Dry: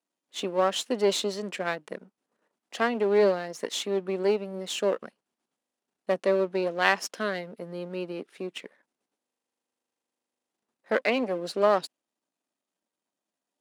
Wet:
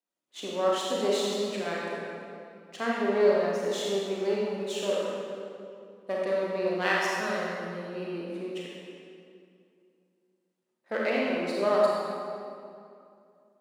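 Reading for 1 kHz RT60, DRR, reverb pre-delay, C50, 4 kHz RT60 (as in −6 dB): 2.4 s, −5.0 dB, 30 ms, −3.0 dB, 1.7 s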